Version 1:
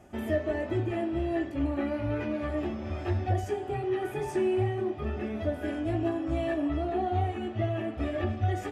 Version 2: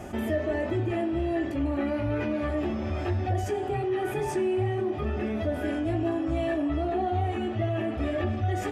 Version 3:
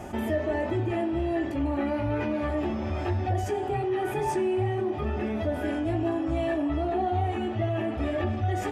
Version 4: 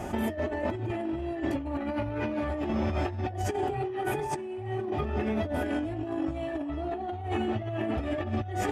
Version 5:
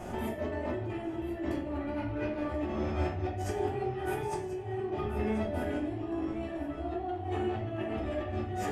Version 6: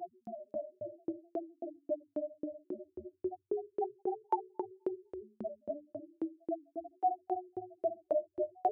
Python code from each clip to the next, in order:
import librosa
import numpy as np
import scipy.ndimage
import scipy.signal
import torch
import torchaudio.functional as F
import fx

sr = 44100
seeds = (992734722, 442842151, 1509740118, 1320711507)

y1 = fx.env_flatten(x, sr, amount_pct=50)
y1 = F.gain(torch.from_numpy(y1), -1.0).numpy()
y2 = fx.peak_eq(y1, sr, hz=890.0, db=6.0, octaves=0.28)
y3 = fx.over_compress(y2, sr, threshold_db=-30.0, ratio=-0.5)
y4 = y3 + 10.0 ** (-13.5 / 20.0) * np.pad(y3, (int(1034 * sr / 1000.0), 0))[:len(y3)]
y4 = fx.room_shoebox(y4, sr, seeds[0], volume_m3=81.0, walls='mixed', distance_m=0.91)
y4 = F.gain(torch.from_numpy(y4), -7.5).numpy()
y5 = fx.spec_topn(y4, sr, count=1)
y5 = fx.echo_feedback(y5, sr, ms=254, feedback_pct=27, wet_db=-6.0)
y5 = fx.filter_lfo_highpass(y5, sr, shape='saw_up', hz=3.7, low_hz=490.0, high_hz=6400.0, q=1.4)
y5 = F.gain(torch.from_numpy(y5), 13.5).numpy()